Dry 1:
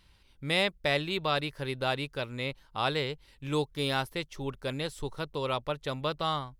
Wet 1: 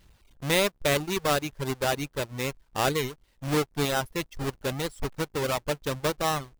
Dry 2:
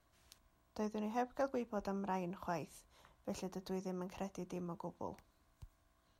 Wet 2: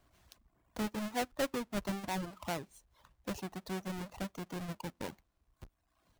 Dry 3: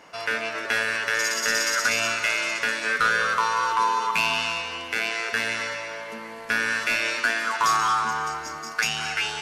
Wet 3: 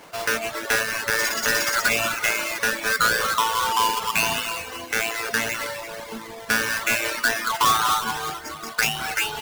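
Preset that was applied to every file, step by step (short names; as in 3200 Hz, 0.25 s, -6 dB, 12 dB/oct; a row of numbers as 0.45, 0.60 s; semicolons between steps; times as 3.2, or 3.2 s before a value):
half-waves squared off; reverb removal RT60 0.99 s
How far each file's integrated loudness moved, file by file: +3.5, +3.5, +1.5 LU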